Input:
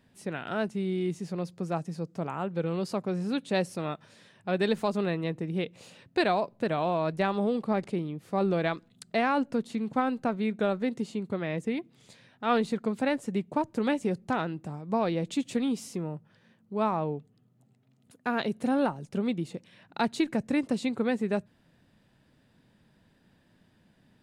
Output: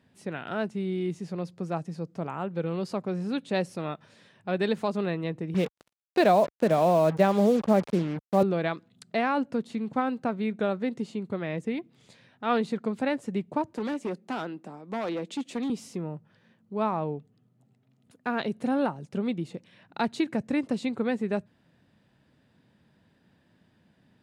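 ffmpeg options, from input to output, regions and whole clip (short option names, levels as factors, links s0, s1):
-filter_complex "[0:a]asettb=1/sr,asplit=3[s0][s1][s2];[s0]atrim=end=5.544[s3];[s1]atrim=start=5.54:end=8.43,asetpts=PTS-STARTPTS,afade=t=in:d=0.004:c=qsin,afade=t=out:st=2.886:d=0.004:c=qsin,adynamicequalizer=threshold=0.00794:dfrequency=590:dqfactor=1.6:tfrequency=590:tqfactor=1.6:attack=5:release=100:ratio=0.375:range=4:mode=boostabove:tftype=bell,highpass=f=170:t=q:w=1.9,acrusher=bits=5:mix=0:aa=0.5[s4];[s2]atrim=start=8.426[s5];[s3][s4]acrossfade=d=0.004:c1=hsin:c2=qsin[s6];[s6][s5]acrossfade=d=0.004:c1=qsin:c2=hsin,asettb=1/sr,asplit=3[s7][s8][s9];[s7]atrim=end=13.734[s10];[s8]atrim=start=13.73:end=15.7,asetpts=PTS-STARTPTS,afade=t=in:d=0.004:c=qsin,afade=t=out:st=1.966:d=0.004:c=qsin,highpass=f=210:w=0.5412,highpass=f=210:w=1.3066,asoftclip=type=hard:threshold=0.0473[s11];[s9]atrim=start=15.696[s12];[s10][s11]acrossfade=d=0.004:c1=hsin:c2=qsin[s13];[s13][s12]acrossfade=d=0.004:c1=qsin:c2=hsin,highpass=58,highshelf=f=7500:g=-8"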